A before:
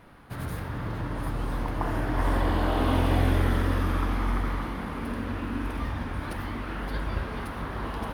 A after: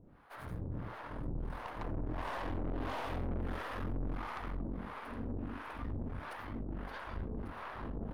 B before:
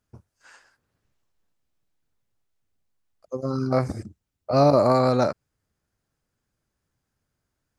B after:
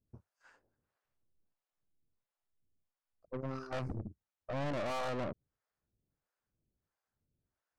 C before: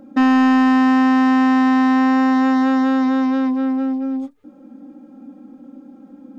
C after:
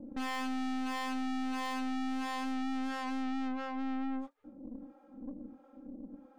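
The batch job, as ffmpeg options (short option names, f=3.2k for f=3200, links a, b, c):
-filter_complex "[0:a]acrossover=split=540[a][b];[a]aeval=exprs='val(0)*(1-1/2+1/2*cos(2*PI*1.5*n/s))':c=same[c];[b]aeval=exprs='val(0)*(1-1/2-1/2*cos(2*PI*1.5*n/s))':c=same[d];[c][d]amix=inputs=2:normalize=0,highshelf=f=2.6k:g=-12,aeval=exprs='(tanh(56.2*val(0)+0.6)-tanh(0.6))/56.2':c=same"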